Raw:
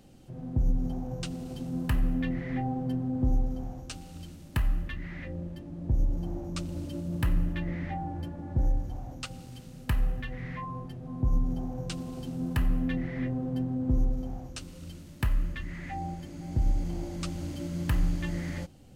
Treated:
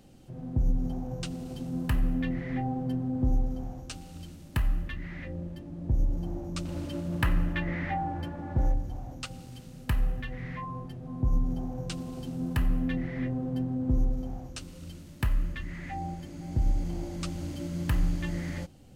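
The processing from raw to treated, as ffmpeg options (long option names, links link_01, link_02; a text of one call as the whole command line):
ffmpeg -i in.wav -filter_complex "[0:a]asettb=1/sr,asplit=3[link_01][link_02][link_03];[link_01]atrim=end=6.654[link_04];[link_02]atrim=start=6.65:end=8.74,asetpts=PTS-STARTPTS,afade=type=in:duration=0.004:curve=qsin,afade=type=out:start_time=2.086:duration=0.004:curve=qsin,equalizer=frequency=1500:width=0.46:gain=8.5[link_05];[link_03]atrim=start=8.736[link_06];[link_04][link_05]acrossfade=duration=0.004:curve1=hsin:curve2=qsin[link_07];[link_07][link_06]acrossfade=duration=0.004:curve1=qsin:curve2=hsin" out.wav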